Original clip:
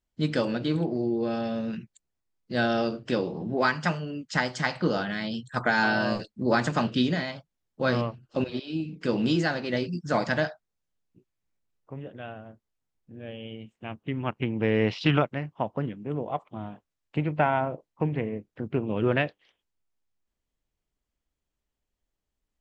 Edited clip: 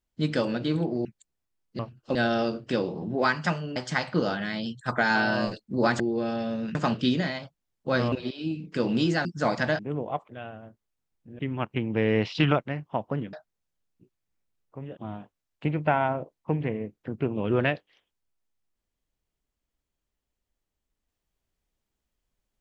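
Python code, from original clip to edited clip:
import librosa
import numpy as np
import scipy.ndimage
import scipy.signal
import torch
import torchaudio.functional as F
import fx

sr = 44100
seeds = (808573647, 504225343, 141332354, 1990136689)

y = fx.edit(x, sr, fx.move(start_s=1.05, length_s=0.75, to_s=6.68),
    fx.cut(start_s=4.15, length_s=0.29),
    fx.move(start_s=8.05, length_s=0.36, to_s=2.54),
    fx.cut(start_s=9.54, length_s=0.4),
    fx.swap(start_s=10.48, length_s=1.64, other_s=15.99, other_length_s=0.5),
    fx.cut(start_s=13.22, length_s=0.83), tone=tone)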